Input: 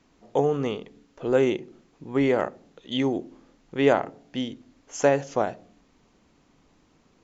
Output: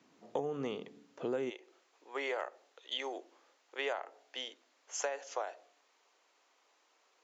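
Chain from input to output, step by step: Bessel high-pass 180 Hz, order 6, from 1.49 s 710 Hz; compressor 6:1, threshold -30 dBFS, peak gain reduction 13.5 dB; gain -3 dB

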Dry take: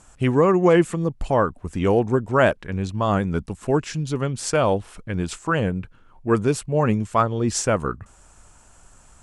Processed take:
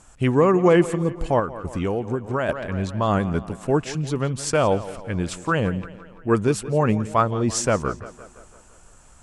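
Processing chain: tape echo 0.171 s, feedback 60%, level -15 dB, low-pass 5800 Hz; 1.39–2.49 compressor 6:1, threshold -21 dBFS, peak gain reduction 9.5 dB

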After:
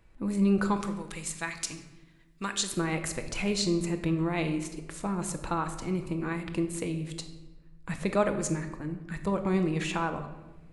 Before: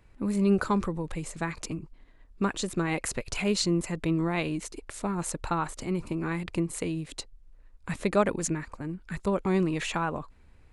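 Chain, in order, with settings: 0.76–2.72 tilt shelf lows -9 dB, about 1300 Hz; shoebox room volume 620 m³, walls mixed, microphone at 0.68 m; gain -2.5 dB

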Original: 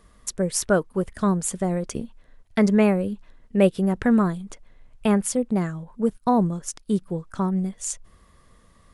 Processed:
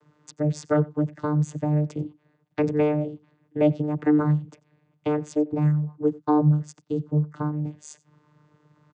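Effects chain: echo 91 ms -22.5 dB; vocoder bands 16, saw 150 Hz

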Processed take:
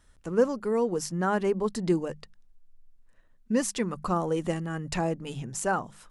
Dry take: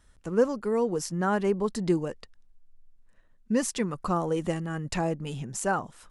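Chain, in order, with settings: notches 50/100/150/200 Hz

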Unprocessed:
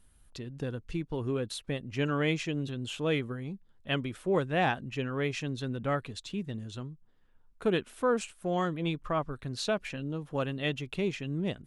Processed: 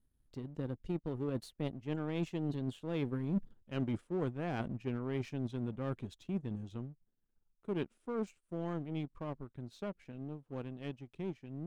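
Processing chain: Doppler pass-by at 3.39, 19 m/s, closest 4.5 m; low shelf 160 Hz +9.5 dB; reverse; compressor 16:1, threshold -51 dBFS, peak gain reduction 23 dB; reverse; bell 280 Hz +10 dB 2.2 oct; power-law curve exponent 1.4; gain +14 dB

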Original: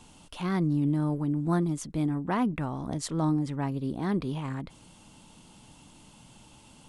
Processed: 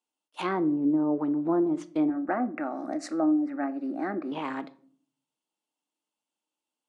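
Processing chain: treble ducked by the level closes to 640 Hz, closed at -22 dBFS; HPF 300 Hz 24 dB/oct; gate -43 dBFS, range -40 dB; 2.1–4.32 fixed phaser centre 660 Hz, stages 8; shoebox room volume 550 m³, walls furnished, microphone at 0.53 m; gain +6.5 dB

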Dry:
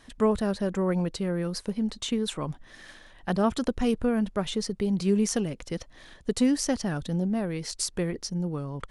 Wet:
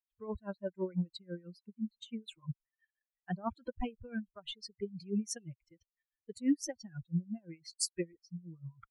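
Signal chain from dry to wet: per-bin expansion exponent 3; dB-linear tremolo 6 Hz, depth 23 dB; gain +1.5 dB

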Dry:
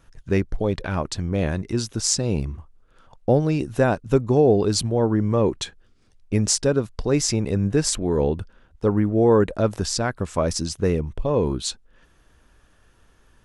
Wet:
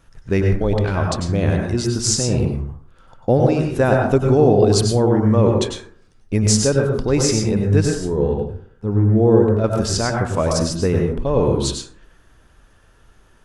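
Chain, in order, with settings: 7.82–9.64 harmonic-percussive split percussive -16 dB; plate-style reverb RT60 0.55 s, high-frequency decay 0.45×, pre-delay 85 ms, DRR 1 dB; gain +2 dB

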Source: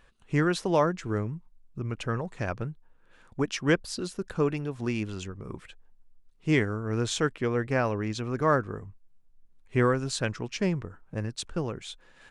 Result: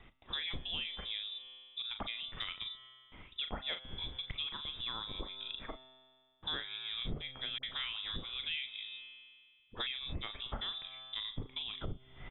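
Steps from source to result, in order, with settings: HPF 100 Hz 24 dB/oct; doubler 38 ms -9 dB; gate with hold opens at -52 dBFS; inverted band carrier 3700 Hz; tilt -4.5 dB/oct; resonator 130 Hz, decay 1.9 s, mix 60%; 7.58–9.87 dispersion highs, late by 53 ms, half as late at 710 Hz; compressor 5:1, threshold -51 dBFS, peak gain reduction 23.5 dB; gain +13 dB

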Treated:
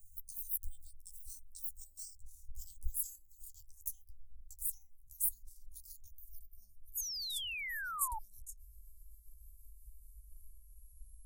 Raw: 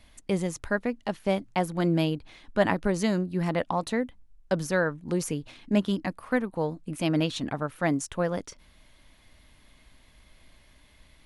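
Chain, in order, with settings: gliding pitch shift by +12 st ending unshifted; inverse Chebyshev band-stop 230–2600 Hz, stop band 70 dB; painted sound fall, 6.97–8.19, 840–6900 Hz -47 dBFS; gain +6 dB

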